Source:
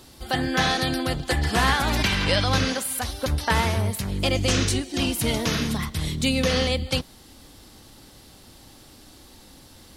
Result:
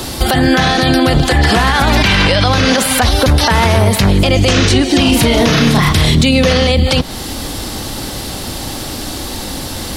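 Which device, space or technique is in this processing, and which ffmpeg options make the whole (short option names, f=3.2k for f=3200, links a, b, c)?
mastering chain: -filter_complex "[0:a]asettb=1/sr,asplit=3[a][b][c];[a]atrim=end=5.014[d];[b]atrim=start=5.01:end=6.15,asetpts=PTS-STARTPTS,afade=t=in:d=0.004:c=qsin,afade=t=out:st=1.136:d=0.004:c=qsin,asplit=2[e][f];[f]adelay=34,volume=-3dB[g];[e][g]amix=inputs=2:normalize=0,atrim=end_sample=50274[h];[c]atrim=start=6.146[i];[d][h]acrossfade=d=0.004:c1=hsin:c2=qsin[j];[j][i]acrossfade=d=0.004:c1=qsin:c2=hsin,equalizer=f=670:t=o:w=0.77:g=2,acrossover=split=240|5200[k][l][m];[k]acompressor=threshold=-27dB:ratio=4[n];[l]acompressor=threshold=-25dB:ratio=4[o];[m]acompressor=threshold=-46dB:ratio=4[p];[n][o][p]amix=inputs=3:normalize=0,acompressor=threshold=-32dB:ratio=1.5,asoftclip=type=hard:threshold=-16.5dB,alimiter=level_in=26.5dB:limit=-1dB:release=50:level=0:latency=1,volume=-1dB"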